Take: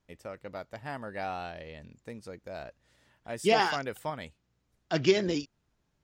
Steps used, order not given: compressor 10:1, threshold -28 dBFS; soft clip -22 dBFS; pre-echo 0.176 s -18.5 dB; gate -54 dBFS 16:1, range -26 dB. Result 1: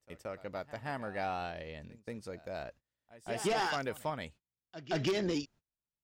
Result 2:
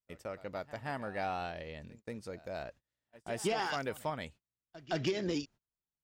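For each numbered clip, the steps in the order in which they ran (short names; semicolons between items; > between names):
gate > pre-echo > soft clip > compressor; compressor > pre-echo > soft clip > gate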